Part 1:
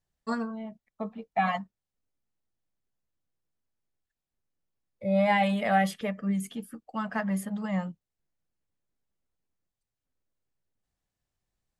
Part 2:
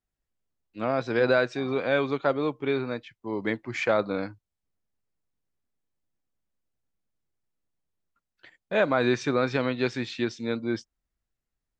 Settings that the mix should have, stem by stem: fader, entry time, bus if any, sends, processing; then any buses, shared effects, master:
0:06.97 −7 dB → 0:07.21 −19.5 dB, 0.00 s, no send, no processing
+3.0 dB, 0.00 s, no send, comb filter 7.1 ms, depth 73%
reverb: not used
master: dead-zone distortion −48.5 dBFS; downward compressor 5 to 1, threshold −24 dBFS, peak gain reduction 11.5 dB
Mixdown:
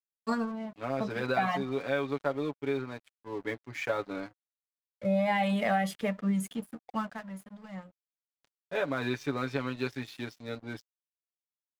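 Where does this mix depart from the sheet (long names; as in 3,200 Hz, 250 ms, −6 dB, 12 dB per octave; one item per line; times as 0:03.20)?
stem 1 −7.0 dB → +2.0 dB
stem 2 +3.0 dB → −7.5 dB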